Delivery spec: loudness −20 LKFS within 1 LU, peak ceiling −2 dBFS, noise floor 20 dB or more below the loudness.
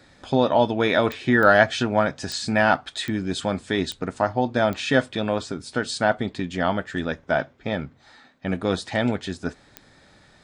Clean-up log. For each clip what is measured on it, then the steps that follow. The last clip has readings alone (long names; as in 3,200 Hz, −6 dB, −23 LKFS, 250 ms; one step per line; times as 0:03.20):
number of clicks 7; integrated loudness −23.0 LKFS; sample peak −2.0 dBFS; target loudness −20.0 LKFS
→ click removal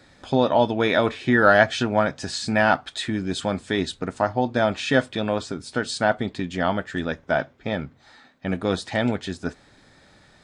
number of clicks 0; integrated loudness −23.0 LKFS; sample peak −2.0 dBFS; target loudness −20.0 LKFS
→ level +3 dB
brickwall limiter −2 dBFS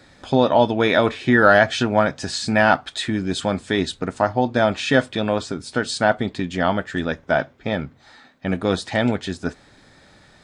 integrated loudness −20.5 LKFS; sample peak −2.0 dBFS; background noise floor −52 dBFS